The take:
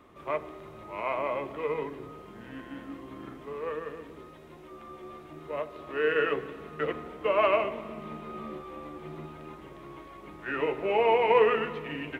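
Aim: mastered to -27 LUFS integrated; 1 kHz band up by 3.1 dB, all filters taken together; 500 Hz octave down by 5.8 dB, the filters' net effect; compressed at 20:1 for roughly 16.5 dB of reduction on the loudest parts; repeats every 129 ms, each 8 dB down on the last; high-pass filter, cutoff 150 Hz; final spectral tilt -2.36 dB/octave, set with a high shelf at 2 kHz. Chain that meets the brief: high-pass 150 Hz; peaking EQ 500 Hz -8.5 dB; peaking EQ 1 kHz +4 dB; treble shelf 2 kHz +7 dB; compression 20:1, threshold -34 dBFS; feedback delay 129 ms, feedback 40%, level -8 dB; trim +13 dB

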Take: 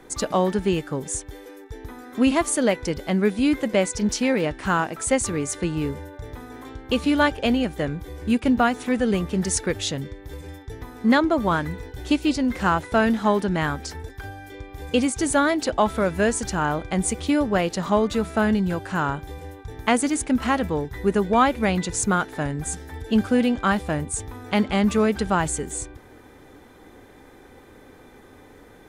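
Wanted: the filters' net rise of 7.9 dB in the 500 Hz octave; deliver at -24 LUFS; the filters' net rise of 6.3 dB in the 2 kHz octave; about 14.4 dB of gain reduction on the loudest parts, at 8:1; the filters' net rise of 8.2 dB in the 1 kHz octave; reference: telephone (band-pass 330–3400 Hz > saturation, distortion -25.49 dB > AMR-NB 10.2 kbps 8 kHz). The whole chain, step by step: peaking EQ 500 Hz +8.5 dB; peaking EQ 1 kHz +6.5 dB; peaking EQ 2 kHz +5.5 dB; compression 8:1, threshold -22 dBFS; band-pass 330–3400 Hz; saturation -11.5 dBFS; trim +6.5 dB; AMR-NB 10.2 kbps 8 kHz

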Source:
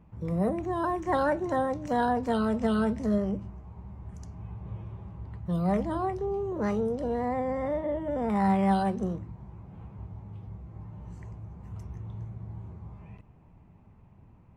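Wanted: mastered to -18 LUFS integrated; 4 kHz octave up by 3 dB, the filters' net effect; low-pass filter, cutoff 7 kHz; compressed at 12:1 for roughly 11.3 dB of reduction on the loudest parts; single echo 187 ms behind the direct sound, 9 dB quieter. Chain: low-pass 7 kHz; peaking EQ 4 kHz +4 dB; compression 12:1, threshold -32 dBFS; delay 187 ms -9 dB; trim +20 dB

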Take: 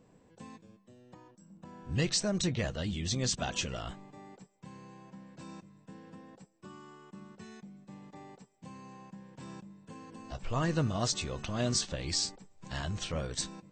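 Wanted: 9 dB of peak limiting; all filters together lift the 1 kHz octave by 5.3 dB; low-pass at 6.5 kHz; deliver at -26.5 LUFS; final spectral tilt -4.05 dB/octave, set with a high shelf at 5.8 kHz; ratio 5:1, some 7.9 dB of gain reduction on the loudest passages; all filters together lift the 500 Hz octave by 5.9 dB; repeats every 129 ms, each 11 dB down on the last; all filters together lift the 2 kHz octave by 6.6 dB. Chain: low-pass 6.5 kHz; peaking EQ 500 Hz +6 dB; peaking EQ 1 kHz +3 dB; peaking EQ 2 kHz +6.5 dB; treble shelf 5.8 kHz +7 dB; compression 5:1, threshold -31 dBFS; peak limiter -28 dBFS; feedback delay 129 ms, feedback 28%, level -11 dB; trim +14 dB

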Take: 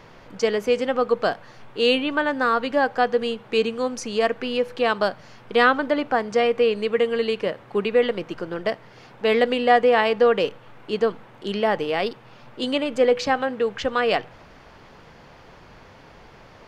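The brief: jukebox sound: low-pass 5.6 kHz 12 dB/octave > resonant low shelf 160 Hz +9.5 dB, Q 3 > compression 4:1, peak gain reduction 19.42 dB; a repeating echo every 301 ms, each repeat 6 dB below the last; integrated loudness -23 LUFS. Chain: low-pass 5.6 kHz 12 dB/octave; resonant low shelf 160 Hz +9.5 dB, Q 3; feedback delay 301 ms, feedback 50%, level -6 dB; compression 4:1, threshold -35 dBFS; trim +13.5 dB

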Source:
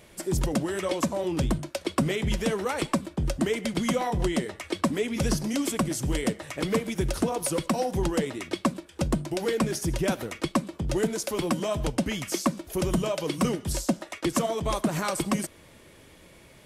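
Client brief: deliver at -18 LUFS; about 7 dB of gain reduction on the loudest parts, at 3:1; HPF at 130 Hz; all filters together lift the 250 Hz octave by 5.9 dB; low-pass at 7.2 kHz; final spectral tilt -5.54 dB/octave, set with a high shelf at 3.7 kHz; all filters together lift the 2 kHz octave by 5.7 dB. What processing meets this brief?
high-pass 130 Hz; low-pass 7.2 kHz; peaking EQ 250 Hz +8 dB; peaking EQ 2 kHz +7.5 dB; treble shelf 3.7 kHz -3 dB; compression 3:1, threshold -24 dBFS; trim +10.5 dB

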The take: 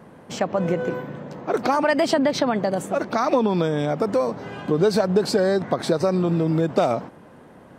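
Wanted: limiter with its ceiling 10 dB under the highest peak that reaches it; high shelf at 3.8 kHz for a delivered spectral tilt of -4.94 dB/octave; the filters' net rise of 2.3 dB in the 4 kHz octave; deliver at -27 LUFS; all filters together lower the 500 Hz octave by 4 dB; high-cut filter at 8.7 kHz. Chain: low-pass 8.7 kHz; peaking EQ 500 Hz -5 dB; treble shelf 3.8 kHz -4 dB; peaking EQ 4 kHz +5.5 dB; trim +1 dB; peak limiter -17.5 dBFS

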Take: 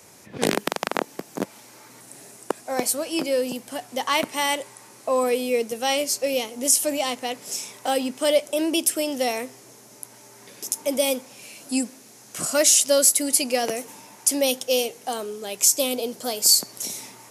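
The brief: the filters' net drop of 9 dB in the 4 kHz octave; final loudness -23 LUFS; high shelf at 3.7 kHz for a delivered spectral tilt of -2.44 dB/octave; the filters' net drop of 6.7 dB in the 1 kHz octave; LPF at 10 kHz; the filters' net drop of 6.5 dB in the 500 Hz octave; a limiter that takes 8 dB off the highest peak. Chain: low-pass 10 kHz; peaking EQ 500 Hz -5.5 dB; peaking EQ 1 kHz -6 dB; treble shelf 3.7 kHz -7.5 dB; peaking EQ 4 kHz -6.5 dB; trim +8.5 dB; peak limiter -10 dBFS

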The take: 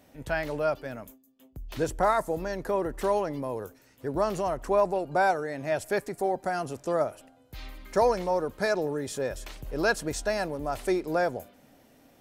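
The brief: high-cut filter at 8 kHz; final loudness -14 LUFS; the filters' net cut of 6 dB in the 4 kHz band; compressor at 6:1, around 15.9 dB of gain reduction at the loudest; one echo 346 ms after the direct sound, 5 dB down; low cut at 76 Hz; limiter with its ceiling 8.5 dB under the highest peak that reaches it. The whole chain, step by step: high-pass 76 Hz; low-pass 8 kHz; peaking EQ 4 kHz -7.5 dB; compression 6:1, threshold -37 dBFS; peak limiter -32.5 dBFS; delay 346 ms -5 dB; trim +28.5 dB

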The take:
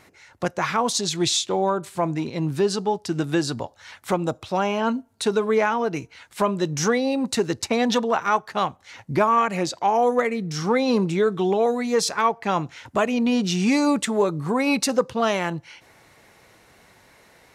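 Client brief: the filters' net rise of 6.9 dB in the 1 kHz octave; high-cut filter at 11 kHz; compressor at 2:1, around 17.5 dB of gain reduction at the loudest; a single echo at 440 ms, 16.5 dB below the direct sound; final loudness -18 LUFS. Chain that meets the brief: low-pass 11 kHz; peaking EQ 1 kHz +8.5 dB; compression 2:1, threshold -42 dBFS; delay 440 ms -16.5 dB; trim +16 dB

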